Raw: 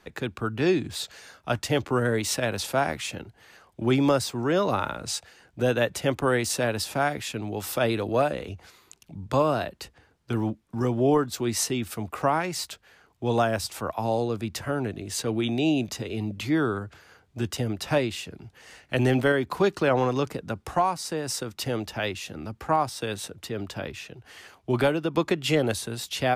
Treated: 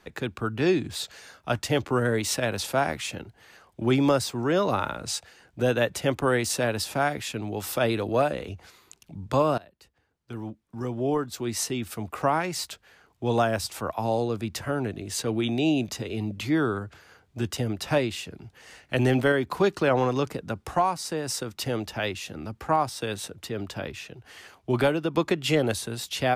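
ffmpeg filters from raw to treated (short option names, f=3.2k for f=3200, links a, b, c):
-filter_complex "[0:a]asplit=2[a][b];[a]atrim=end=9.58,asetpts=PTS-STARTPTS,afade=t=out:st=9.576:d=0.004:c=hsin:silence=0.0841395[c];[b]atrim=start=9.58,asetpts=PTS-STARTPTS,afade=t=in:d=2.79:silence=0.0841395[d];[c][d]concat=n=2:v=0:a=1"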